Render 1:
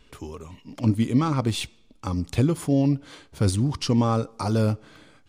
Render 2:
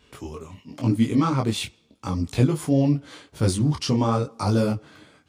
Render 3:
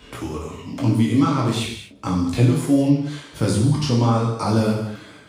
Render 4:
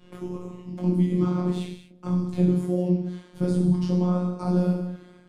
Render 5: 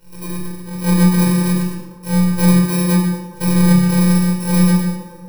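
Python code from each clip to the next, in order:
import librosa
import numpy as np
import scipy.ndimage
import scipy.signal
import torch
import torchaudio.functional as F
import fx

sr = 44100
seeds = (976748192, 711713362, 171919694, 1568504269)

y1 = scipy.signal.sosfilt(scipy.signal.butter(2, 72.0, 'highpass', fs=sr, output='sos'), x)
y1 = fx.detune_double(y1, sr, cents=31)
y1 = y1 * librosa.db_to_amplitude(5.0)
y2 = fx.rev_gated(y1, sr, seeds[0], gate_ms=270, shape='falling', drr_db=-1.0)
y2 = fx.band_squash(y2, sr, depth_pct=40)
y3 = fx.low_shelf(y2, sr, hz=69.0, db=-6.0)
y3 = fx.robotise(y3, sr, hz=179.0)
y3 = fx.tilt_shelf(y3, sr, db=8.5, hz=690.0)
y3 = y3 * librosa.db_to_amplitude(-6.5)
y4 = fx.bit_reversed(y3, sr, seeds[1], block=64)
y4 = fx.echo_wet_bandpass(y4, sr, ms=119, feedback_pct=76, hz=650.0, wet_db=-9.5)
y4 = fx.room_shoebox(y4, sr, seeds[2], volume_m3=2900.0, walls='furnished', distance_m=4.8)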